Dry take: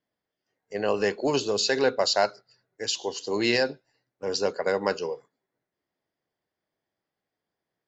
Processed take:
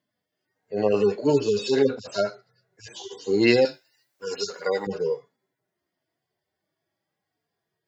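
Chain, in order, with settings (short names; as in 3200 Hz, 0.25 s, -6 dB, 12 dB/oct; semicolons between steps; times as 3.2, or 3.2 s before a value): median-filter separation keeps harmonic; 3.65–4.87 tilt +4.5 dB/oct; gain +7 dB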